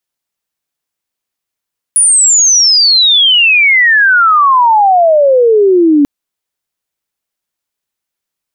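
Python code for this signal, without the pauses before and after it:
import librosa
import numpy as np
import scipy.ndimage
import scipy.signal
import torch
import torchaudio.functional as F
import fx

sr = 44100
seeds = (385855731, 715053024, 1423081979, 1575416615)

y = fx.chirp(sr, length_s=4.09, from_hz=9900.0, to_hz=280.0, law='logarithmic', from_db=-4.5, to_db=-4.0)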